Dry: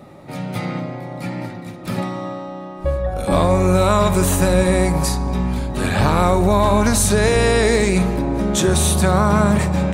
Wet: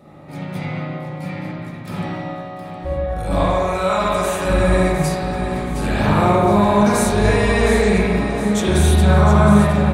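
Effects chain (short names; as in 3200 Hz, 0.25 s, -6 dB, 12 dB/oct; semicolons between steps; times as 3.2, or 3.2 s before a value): 3.39–4.45 weighting filter A; on a send: feedback echo 0.714 s, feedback 43%, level -10 dB; on the sum: spring tank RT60 1.3 s, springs 39/53/59 ms, chirp 35 ms, DRR -6.5 dB; gain -7 dB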